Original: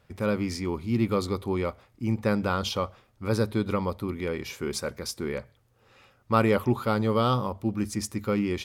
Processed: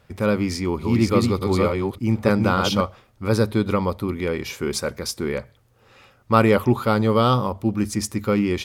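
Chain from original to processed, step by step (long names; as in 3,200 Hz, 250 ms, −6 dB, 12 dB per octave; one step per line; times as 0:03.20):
0:00.51–0:02.81: delay that plays each chunk backwards 294 ms, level −2.5 dB
level +6 dB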